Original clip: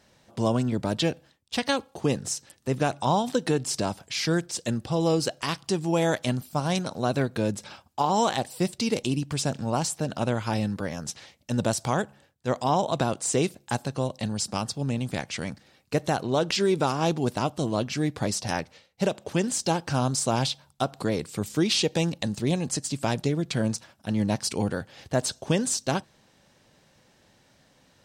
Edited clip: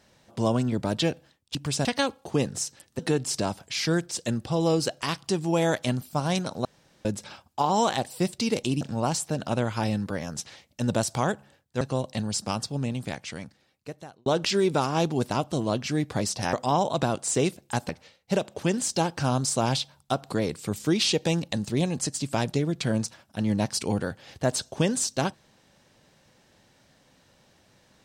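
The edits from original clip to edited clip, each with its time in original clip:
0:02.69–0:03.39: remove
0:07.05–0:07.45: fill with room tone
0:09.21–0:09.51: move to 0:01.55
0:12.51–0:13.87: move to 0:18.59
0:14.70–0:16.32: fade out

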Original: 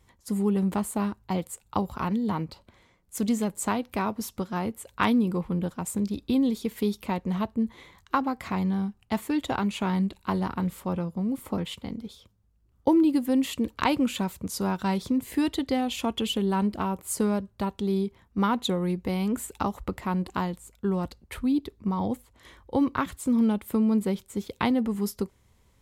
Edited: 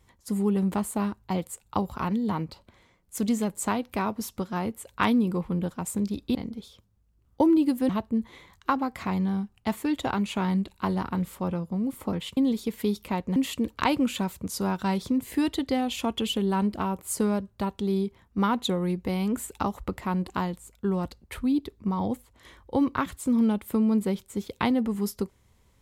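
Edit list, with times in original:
0:06.35–0:07.34: swap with 0:11.82–0:13.36

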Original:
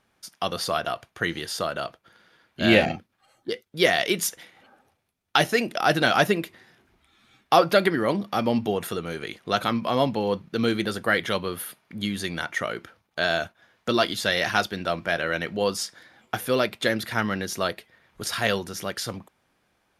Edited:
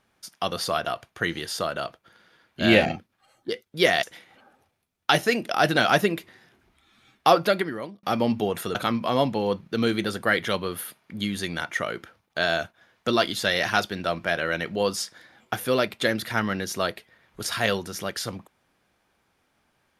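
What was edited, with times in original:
0:04.03–0:04.29: remove
0:07.57–0:08.29: fade out
0:09.01–0:09.56: remove

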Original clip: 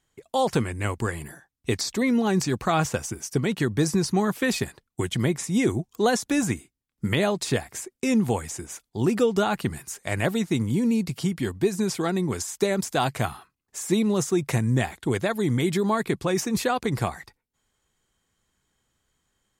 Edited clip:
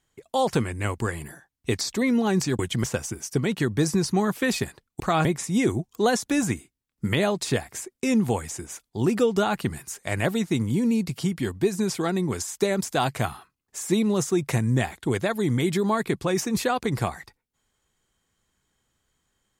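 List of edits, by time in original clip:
0:02.59–0:02.84: swap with 0:05.00–0:05.25

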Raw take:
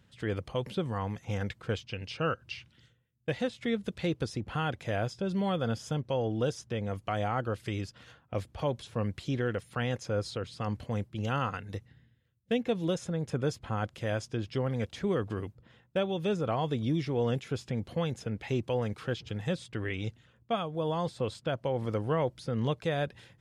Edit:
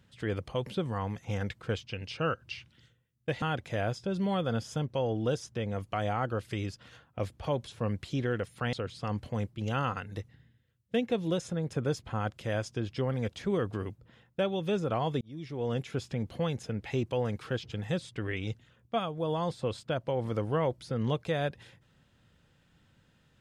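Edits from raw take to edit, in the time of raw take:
0:03.42–0:04.57: remove
0:09.88–0:10.30: remove
0:16.78–0:17.45: fade in

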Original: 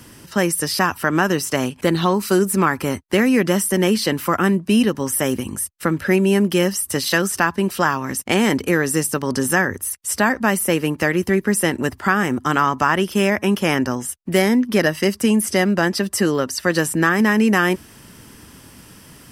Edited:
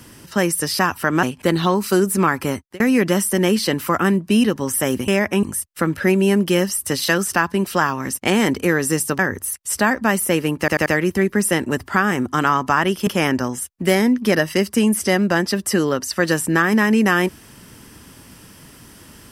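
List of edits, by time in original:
0:01.23–0:01.62: remove
0:02.89–0:03.19: fade out
0:09.23–0:09.58: remove
0:10.98: stutter 0.09 s, 4 plays
0:13.19–0:13.54: move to 0:05.47

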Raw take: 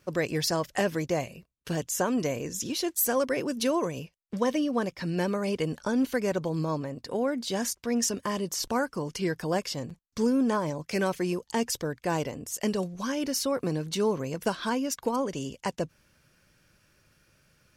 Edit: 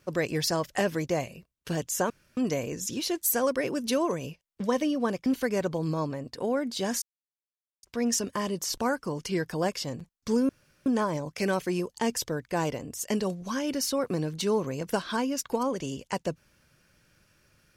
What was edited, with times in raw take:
0:02.10: splice in room tone 0.27 s
0:04.99–0:05.97: remove
0:07.73: splice in silence 0.81 s
0:10.39: splice in room tone 0.37 s

